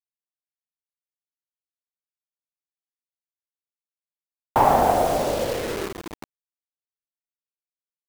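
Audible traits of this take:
a quantiser's noise floor 6 bits, dither none
tremolo saw up 0.68 Hz, depth 45%

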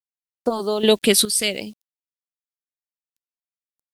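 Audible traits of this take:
sample-and-hold tremolo 2.4 Hz, depth 75%
a quantiser's noise floor 10 bits, dither none
phaser sweep stages 2, 0.59 Hz, lowest notch 800–2,600 Hz

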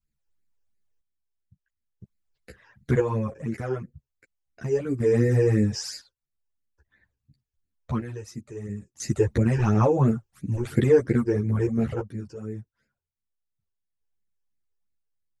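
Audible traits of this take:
phaser sweep stages 12, 2.9 Hz, lowest notch 200–1,100 Hz
sample-and-hold tremolo 1 Hz, depth 85%
a shimmering, thickened sound

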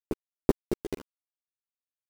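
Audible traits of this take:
a quantiser's noise floor 6 bits, dither none
tremolo triangle 6.9 Hz, depth 90%
a shimmering, thickened sound

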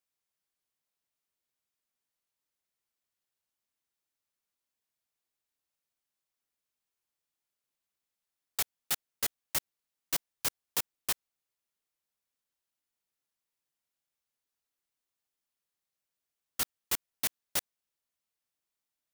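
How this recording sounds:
background noise floor −89 dBFS
spectral slope 0.0 dB per octave

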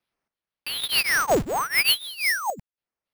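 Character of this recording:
phaser sweep stages 6, 1.1 Hz, lowest notch 300–4,000 Hz
sample-and-hold tremolo 3.6 Hz, depth 90%
aliases and images of a low sample rate 7,300 Hz, jitter 0%

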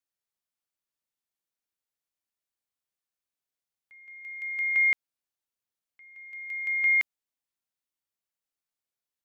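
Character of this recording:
background noise floor −91 dBFS
spectral slope −2.5 dB per octave

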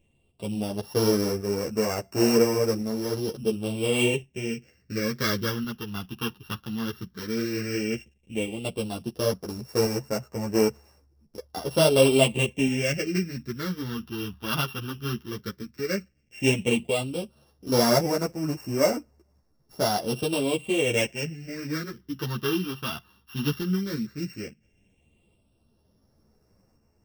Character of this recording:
a buzz of ramps at a fixed pitch in blocks of 16 samples
phaser sweep stages 6, 0.12 Hz, lowest notch 570–3,200 Hz
tremolo saw up 0.71 Hz, depth 35%
a shimmering, thickened sound

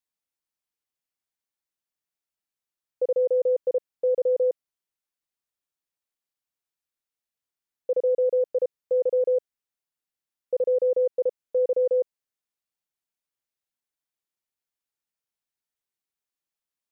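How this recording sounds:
background noise floor −91 dBFS
spectral slope +4.0 dB per octave

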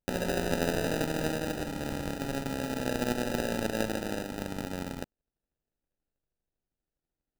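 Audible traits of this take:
a buzz of ramps at a fixed pitch in blocks of 8 samples
phaser sweep stages 4, 0.36 Hz, lowest notch 680–2,500 Hz
aliases and images of a low sample rate 1,100 Hz, jitter 0%

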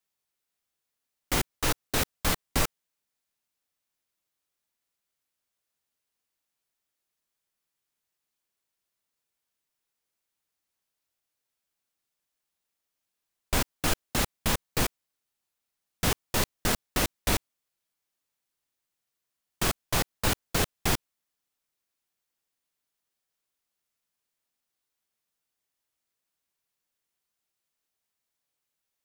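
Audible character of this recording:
background noise floor −85 dBFS
spectral slope −3.0 dB per octave

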